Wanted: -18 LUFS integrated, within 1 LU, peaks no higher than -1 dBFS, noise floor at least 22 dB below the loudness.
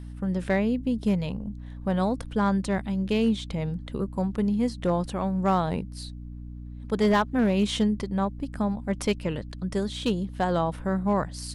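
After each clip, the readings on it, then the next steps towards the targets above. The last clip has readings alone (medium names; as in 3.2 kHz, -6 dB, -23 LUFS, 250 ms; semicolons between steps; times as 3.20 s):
clipped samples 0.4%; clipping level -15.5 dBFS; hum 60 Hz; highest harmonic 300 Hz; hum level -37 dBFS; loudness -27.0 LUFS; peak level -15.5 dBFS; loudness target -18.0 LUFS
-> clip repair -15.5 dBFS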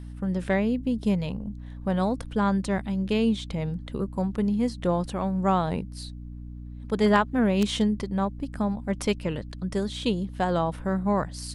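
clipped samples 0.0%; hum 60 Hz; highest harmonic 300 Hz; hum level -37 dBFS
-> hum notches 60/120/180/240/300 Hz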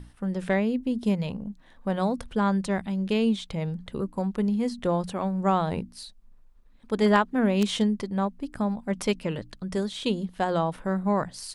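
hum not found; loudness -27.0 LUFS; peak level -7.0 dBFS; loudness target -18.0 LUFS
-> trim +9 dB; peak limiter -1 dBFS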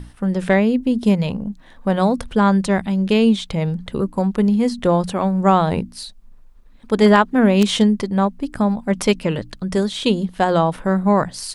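loudness -18.5 LUFS; peak level -1.0 dBFS; noise floor -45 dBFS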